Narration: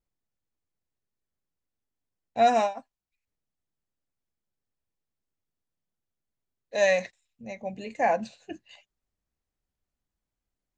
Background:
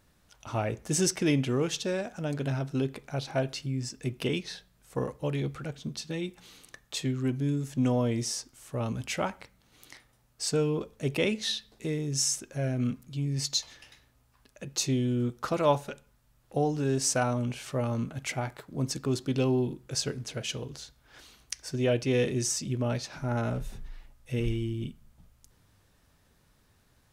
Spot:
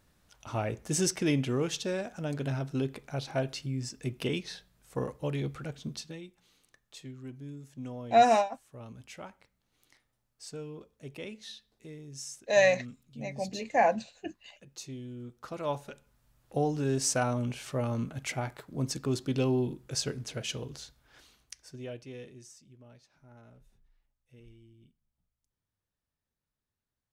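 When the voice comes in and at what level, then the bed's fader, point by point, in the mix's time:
5.75 s, 0.0 dB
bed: 5.97 s -2 dB
6.29 s -14.5 dB
15.24 s -14.5 dB
16.25 s -1.5 dB
20.88 s -1.5 dB
22.68 s -25.5 dB

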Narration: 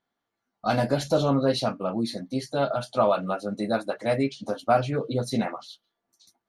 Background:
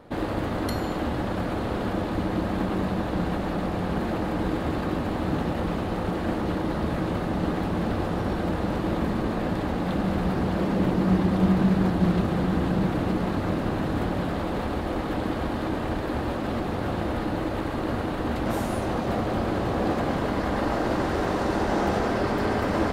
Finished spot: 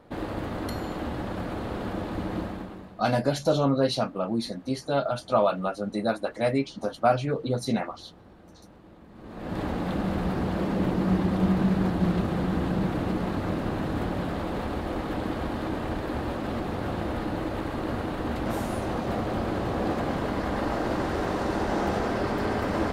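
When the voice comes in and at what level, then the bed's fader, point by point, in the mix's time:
2.35 s, -0.5 dB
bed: 2.41 s -4.5 dB
3.08 s -25 dB
9.08 s -25 dB
9.59 s -2.5 dB

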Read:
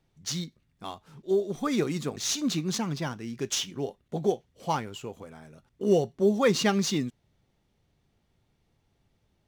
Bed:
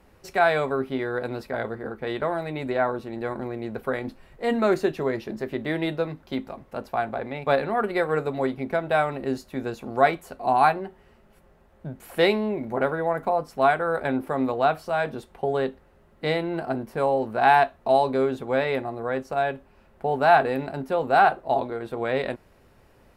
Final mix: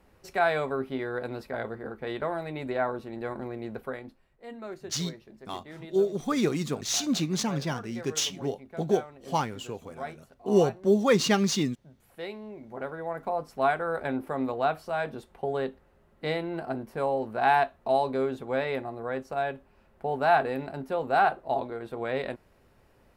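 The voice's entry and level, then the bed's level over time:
4.65 s, +1.0 dB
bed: 3.74 s -4.5 dB
4.33 s -18.5 dB
12.2 s -18.5 dB
13.46 s -5 dB

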